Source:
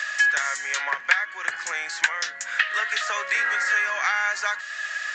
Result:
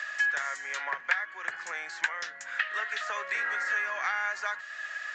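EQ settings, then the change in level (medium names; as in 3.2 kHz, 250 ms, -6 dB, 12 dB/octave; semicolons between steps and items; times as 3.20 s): treble shelf 2.8 kHz -10 dB; -4.5 dB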